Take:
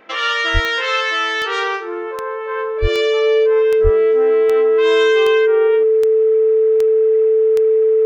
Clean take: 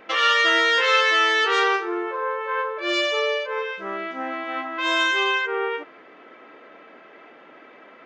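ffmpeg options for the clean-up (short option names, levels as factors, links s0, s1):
-filter_complex "[0:a]adeclick=t=4,bandreject=f=440:w=30,asplit=3[s0][s1][s2];[s0]afade=t=out:st=0.53:d=0.02[s3];[s1]highpass=f=140:w=0.5412,highpass=f=140:w=1.3066,afade=t=in:st=0.53:d=0.02,afade=t=out:st=0.65:d=0.02[s4];[s2]afade=t=in:st=0.65:d=0.02[s5];[s3][s4][s5]amix=inputs=3:normalize=0,asplit=3[s6][s7][s8];[s6]afade=t=out:st=2.81:d=0.02[s9];[s7]highpass=f=140:w=0.5412,highpass=f=140:w=1.3066,afade=t=in:st=2.81:d=0.02,afade=t=out:st=2.93:d=0.02[s10];[s8]afade=t=in:st=2.93:d=0.02[s11];[s9][s10][s11]amix=inputs=3:normalize=0,asplit=3[s12][s13][s14];[s12]afade=t=out:st=3.83:d=0.02[s15];[s13]highpass=f=140:w=0.5412,highpass=f=140:w=1.3066,afade=t=in:st=3.83:d=0.02,afade=t=out:st=3.95:d=0.02[s16];[s14]afade=t=in:st=3.95:d=0.02[s17];[s15][s16][s17]amix=inputs=3:normalize=0"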